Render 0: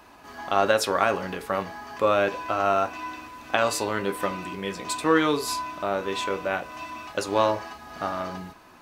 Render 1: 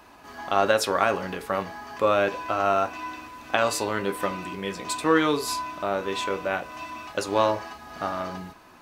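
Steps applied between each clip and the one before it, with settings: nothing audible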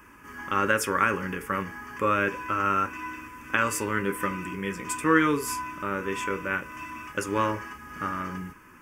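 fixed phaser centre 1700 Hz, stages 4; gain +3 dB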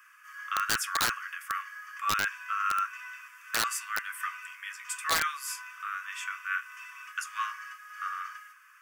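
rippled Chebyshev high-pass 1100 Hz, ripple 3 dB; wrapped overs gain 18.5 dB; gain -1 dB

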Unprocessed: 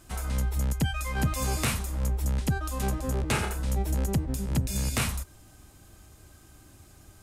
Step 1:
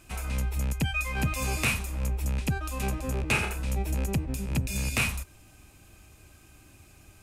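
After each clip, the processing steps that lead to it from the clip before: bell 2500 Hz +13 dB 0.27 oct; gain -1.5 dB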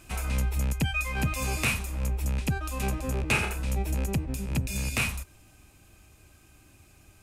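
vocal rider 2 s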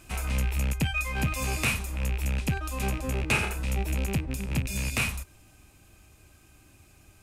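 rattling part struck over -28 dBFS, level -26 dBFS

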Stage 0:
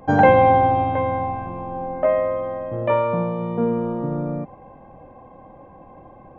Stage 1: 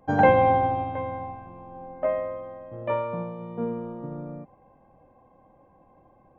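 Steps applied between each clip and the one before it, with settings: upward expander 1.5:1, over -29 dBFS; gain -3.5 dB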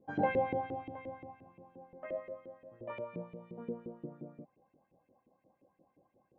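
EQ curve 190 Hz 0 dB, 1000 Hz -19 dB, 2900 Hz -6 dB; LFO band-pass saw up 5.7 Hz 340–2700 Hz; gain +6 dB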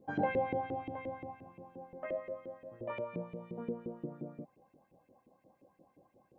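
compressor 1.5:1, threshold -43 dBFS, peak gain reduction 6.5 dB; gain +4.5 dB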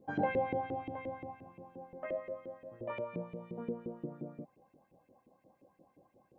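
nothing audible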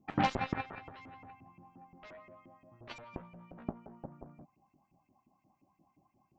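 fixed phaser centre 2500 Hz, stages 8; added harmonics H 7 -14 dB, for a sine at -25 dBFS; gain +7.5 dB

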